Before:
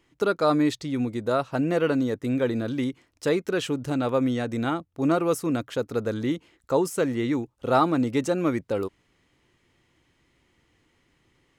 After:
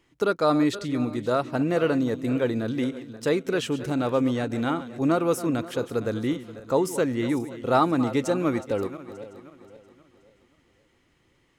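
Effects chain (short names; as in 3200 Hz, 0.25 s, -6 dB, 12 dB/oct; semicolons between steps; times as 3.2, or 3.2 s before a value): regenerating reverse delay 0.264 s, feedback 58%, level -14 dB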